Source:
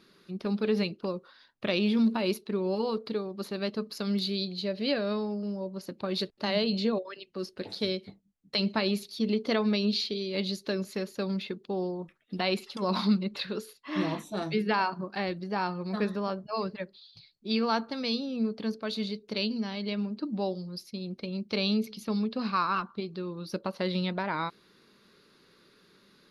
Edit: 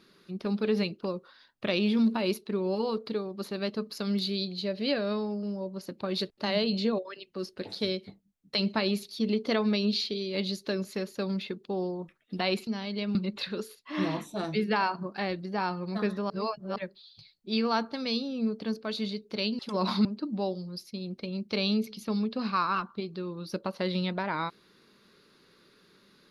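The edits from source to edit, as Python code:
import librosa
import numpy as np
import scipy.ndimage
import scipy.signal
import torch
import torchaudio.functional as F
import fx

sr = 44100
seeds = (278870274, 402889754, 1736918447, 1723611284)

y = fx.edit(x, sr, fx.swap(start_s=12.67, length_s=0.46, other_s=19.57, other_length_s=0.48),
    fx.reverse_span(start_s=16.28, length_s=0.46), tone=tone)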